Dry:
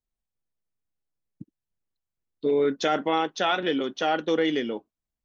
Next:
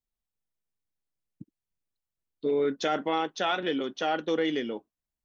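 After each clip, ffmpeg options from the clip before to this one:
ffmpeg -i in.wav -af "acontrast=30,volume=-8.5dB" out.wav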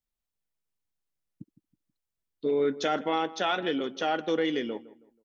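ffmpeg -i in.wav -filter_complex "[0:a]asplit=2[link_01][link_02];[link_02]adelay=161,lowpass=frequency=1600:poles=1,volume=-17dB,asplit=2[link_03][link_04];[link_04]adelay=161,lowpass=frequency=1600:poles=1,volume=0.35,asplit=2[link_05][link_06];[link_06]adelay=161,lowpass=frequency=1600:poles=1,volume=0.35[link_07];[link_01][link_03][link_05][link_07]amix=inputs=4:normalize=0" out.wav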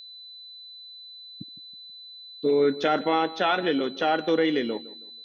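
ffmpeg -i in.wav -filter_complex "[0:a]aeval=exprs='val(0)+0.00631*sin(2*PI*4000*n/s)':channel_layout=same,acrossover=split=4200[link_01][link_02];[link_02]acompressor=threshold=-59dB:ratio=4:attack=1:release=60[link_03];[link_01][link_03]amix=inputs=2:normalize=0,volume=4.5dB" out.wav

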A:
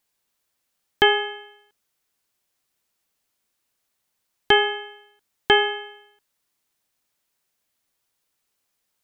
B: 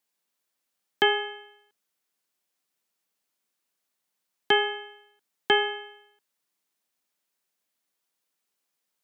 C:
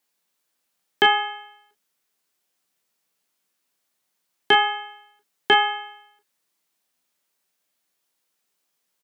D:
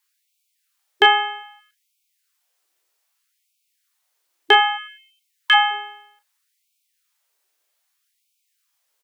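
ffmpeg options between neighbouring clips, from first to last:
ffmpeg -i in.wav -af "highpass=frequency=150:width=0.5412,highpass=frequency=150:width=1.3066,volume=-5dB" out.wav
ffmpeg -i in.wav -af "aecho=1:1:16|28|40:0.335|0.398|0.282,volume=4dB" out.wav
ffmpeg -i in.wav -af "afftfilt=real='re*gte(b*sr/1024,280*pow(2200/280,0.5+0.5*sin(2*PI*0.63*pts/sr)))':imag='im*gte(b*sr/1024,280*pow(2200/280,0.5+0.5*sin(2*PI*0.63*pts/sr)))':win_size=1024:overlap=0.75,volume=3.5dB" out.wav

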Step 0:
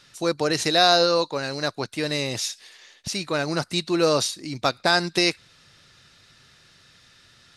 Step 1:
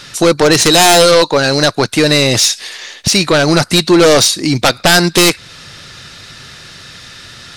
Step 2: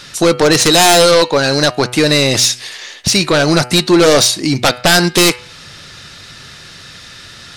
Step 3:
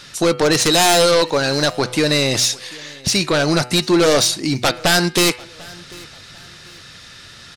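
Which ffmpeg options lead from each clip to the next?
ffmpeg -i in.wav -filter_complex "[0:a]asplit=2[link_01][link_02];[link_02]acompressor=threshold=-29dB:ratio=6,volume=-1dB[link_03];[link_01][link_03]amix=inputs=2:normalize=0,aeval=exprs='0.668*sin(PI/2*3.55*val(0)/0.668)':channel_layout=same" out.wav
ffmpeg -i in.wav -af "bandreject=frequency=123.3:width_type=h:width=4,bandreject=frequency=246.6:width_type=h:width=4,bandreject=frequency=369.9:width_type=h:width=4,bandreject=frequency=493.2:width_type=h:width=4,bandreject=frequency=616.5:width_type=h:width=4,bandreject=frequency=739.8:width_type=h:width=4,bandreject=frequency=863.1:width_type=h:width=4,bandreject=frequency=986.4:width_type=h:width=4,bandreject=frequency=1109.7:width_type=h:width=4,bandreject=frequency=1233:width_type=h:width=4,bandreject=frequency=1356.3:width_type=h:width=4,bandreject=frequency=1479.6:width_type=h:width=4,bandreject=frequency=1602.9:width_type=h:width=4,bandreject=frequency=1726.2:width_type=h:width=4,bandreject=frequency=1849.5:width_type=h:width=4,bandreject=frequency=1972.8:width_type=h:width=4,bandreject=frequency=2096.1:width_type=h:width=4,bandreject=frequency=2219.4:width_type=h:width=4,bandreject=frequency=2342.7:width_type=h:width=4,bandreject=frequency=2466:width_type=h:width=4,bandreject=frequency=2589.3:width_type=h:width=4,bandreject=frequency=2712.6:width_type=h:width=4,bandreject=frequency=2835.9:width_type=h:width=4,bandreject=frequency=2959.2:width_type=h:width=4,bandreject=frequency=3082.5:width_type=h:width=4,bandreject=frequency=3205.8:width_type=h:width=4,volume=-1dB" out.wav
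ffmpeg -i in.wav -af "aecho=1:1:744|1488:0.0668|0.0221,volume=-5dB" out.wav

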